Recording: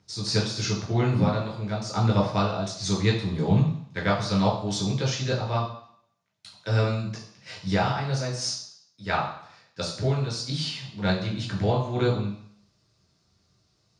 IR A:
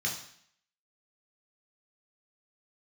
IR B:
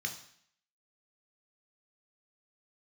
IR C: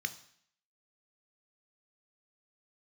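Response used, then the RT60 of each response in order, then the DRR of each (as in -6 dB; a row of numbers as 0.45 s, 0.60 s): A; 0.60 s, 0.60 s, 0.60 s; -2.0 dB, 3.5 dB, 9.5 dB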